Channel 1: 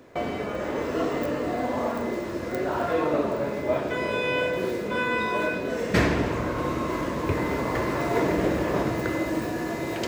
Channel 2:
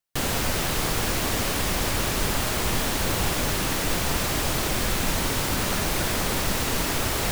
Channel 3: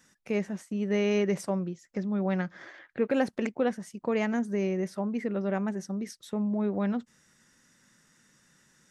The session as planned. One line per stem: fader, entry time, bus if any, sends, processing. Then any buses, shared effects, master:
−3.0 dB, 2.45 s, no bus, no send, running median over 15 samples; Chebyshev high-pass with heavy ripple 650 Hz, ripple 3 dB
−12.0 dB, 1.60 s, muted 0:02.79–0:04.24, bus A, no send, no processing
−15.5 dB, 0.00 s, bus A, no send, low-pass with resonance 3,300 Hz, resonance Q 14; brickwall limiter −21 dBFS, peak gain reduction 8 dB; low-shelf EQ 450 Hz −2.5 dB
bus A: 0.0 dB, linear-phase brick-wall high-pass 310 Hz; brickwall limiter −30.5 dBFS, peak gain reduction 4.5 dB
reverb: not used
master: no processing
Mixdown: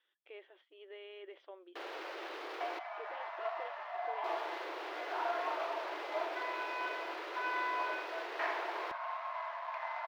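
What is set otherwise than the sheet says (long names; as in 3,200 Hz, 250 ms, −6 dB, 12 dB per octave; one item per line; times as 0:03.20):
stem 2 −12.0 dB → 0.0 dB
master: extra high-frequency loss of the air 320 metres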